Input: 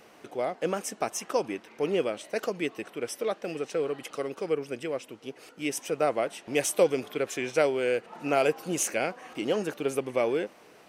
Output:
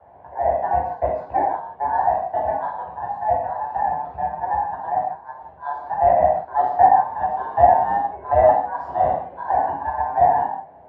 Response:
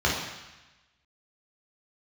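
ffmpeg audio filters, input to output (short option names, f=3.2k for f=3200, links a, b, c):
-filter_complex "[0:a]aeval=exprs='val(0)*sin(2*PI*1300*n/s)':c=same,lowpass=f=720:t=q:w=4.9[a];[1:a]atrim=start_sample=2205,afade=t=out:st=0.24:d=0.01,atrim=end_sample=11025[b];[a][b]afir=irnorm=-1:irlink=0,volume=-9dB"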